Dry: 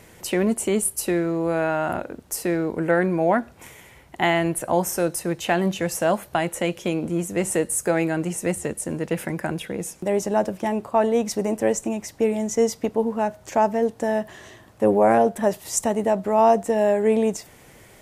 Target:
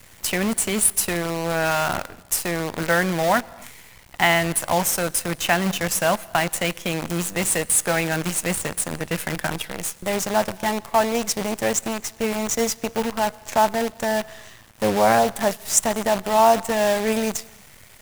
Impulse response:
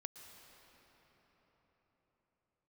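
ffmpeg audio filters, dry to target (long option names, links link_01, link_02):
-filter_complex "[0:a]equalizer=frequency=350:width_type=o:width=1.7:gain=-13,acrusher=bits=6:dc=4:mix=0:aa=0.000001,asplit=2[link_01][link_02];[1:a]atrim=start_sample=2205,afade=type=out:start_time=0.36:duration=0.01,atrim=end_sample=16317[link_03];[link_02][link_03]afir=irnorm=-1:irlink=0,volume=-8dB[link_04];[link_01][link_04]amix=inputs=2:normalize=0,volume=4.5dB"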